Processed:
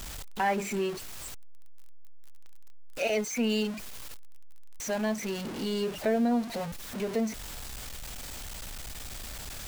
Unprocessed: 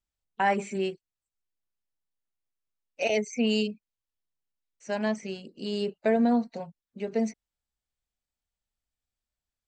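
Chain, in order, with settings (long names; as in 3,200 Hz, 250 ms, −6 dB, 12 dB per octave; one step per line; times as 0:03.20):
converter with a step at zero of −31.5 dBFS
in parallel at −1 dB: downward compressor, threshold −31 dBFS, peak gain reduction 12 dB
on the sum: level −6 dB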